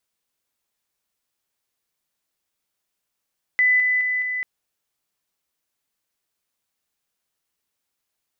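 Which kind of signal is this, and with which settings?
level staircase 2,000 Hz −14 dBFS, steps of −3 dB, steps 4, 0.21 s 0.00 s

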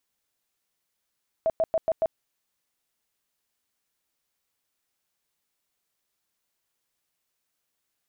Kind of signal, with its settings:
tone bursts 650 Hz, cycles 25, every 0.14 s, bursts 5, −19.5 dBFS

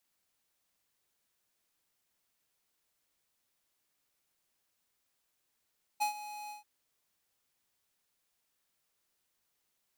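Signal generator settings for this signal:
note with an ADSR envelope square 838 Hz, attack 20 ms, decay 108 ms, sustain −15 dB, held 0.50 s, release 135 ms −29 dBFS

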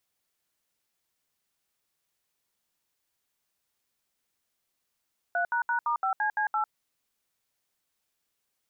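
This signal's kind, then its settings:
touch tones "3##*5CC8", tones 100 ms, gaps 70 ms, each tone −27 dBFS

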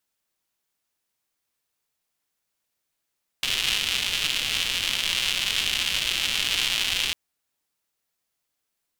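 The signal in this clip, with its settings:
rain-like ticks over hiss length 3.70 s, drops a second 260, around 3,000 Hz, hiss −15 dB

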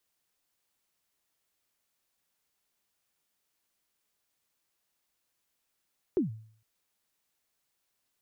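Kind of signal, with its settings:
synth kick length 0.46 s, from 410 Hz, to 110 Hz, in 131 ms, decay 0.54 s, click off, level −20.5 dB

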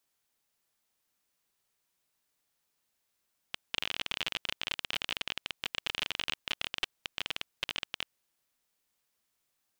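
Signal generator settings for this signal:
Geiger counter clicks 30 per second −15 dBFS 4.49 s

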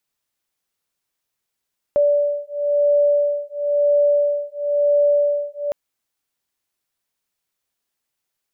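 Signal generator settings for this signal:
two tones that beat 580 Hz, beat 0.98 Hz, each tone −18 dBFS 3.76 s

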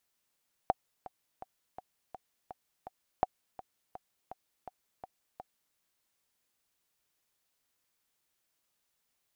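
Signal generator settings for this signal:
click track 166 BPM, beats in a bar 7, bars 2, 750 Hz, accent 18 dB −12.5 dBFS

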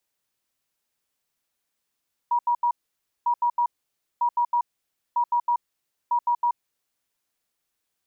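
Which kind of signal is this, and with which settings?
beeps in groups sine 958 Hz, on 0.08 s, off 0.08 s, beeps 3, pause 0.55 s, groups 5, −18.5 dBFS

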